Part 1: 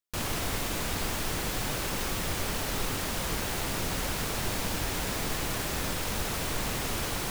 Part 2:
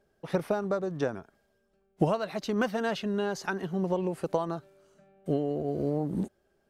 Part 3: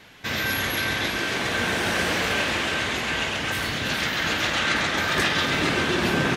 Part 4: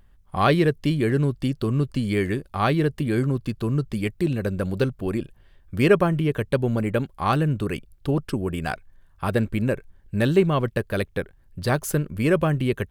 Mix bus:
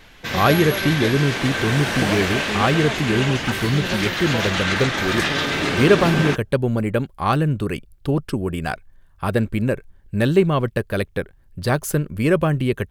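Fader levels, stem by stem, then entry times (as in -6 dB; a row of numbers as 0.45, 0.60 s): off, -0.5 dB, +0.5 dB, +2.5 dB; off, 0.00 s, 0.00 s, 0.00 s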